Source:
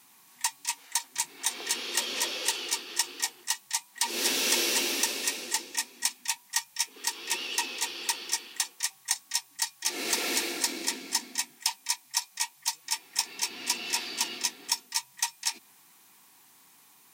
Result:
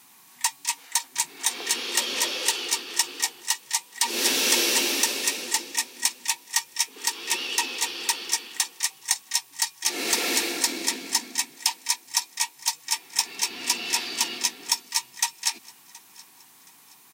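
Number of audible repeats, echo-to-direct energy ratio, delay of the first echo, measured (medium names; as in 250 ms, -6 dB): 2, -22.0 dB, 722 ms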